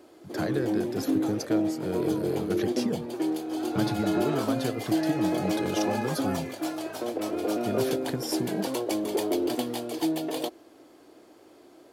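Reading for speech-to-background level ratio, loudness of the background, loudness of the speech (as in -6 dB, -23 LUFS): -4.0 dB, -29.5 LUFS, -33.5 LUFS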